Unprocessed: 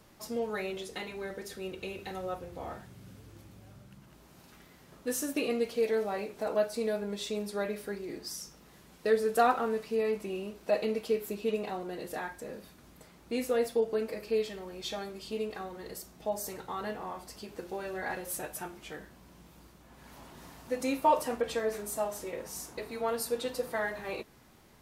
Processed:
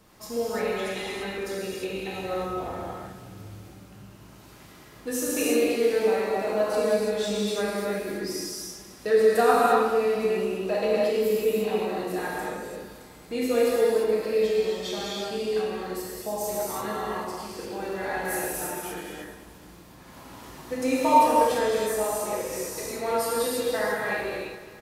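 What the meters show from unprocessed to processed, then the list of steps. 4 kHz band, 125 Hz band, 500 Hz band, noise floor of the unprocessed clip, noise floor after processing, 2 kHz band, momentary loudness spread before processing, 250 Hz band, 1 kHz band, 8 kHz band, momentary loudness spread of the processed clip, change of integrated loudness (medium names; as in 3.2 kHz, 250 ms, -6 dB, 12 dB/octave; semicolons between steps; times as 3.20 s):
+7.5 dB, +7.0 dB, +8.0 dB, -58 dBFS, -49 dBFS, +7.5 dB, 15 LU, +7.0 dB, +8.0 dB, +7.5 dB, 15 LU, +7.5 dB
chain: feedback delay 213 ms, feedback 53%, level -14 dB; gated-style reverb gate 370 ms flat, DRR -6.5 dB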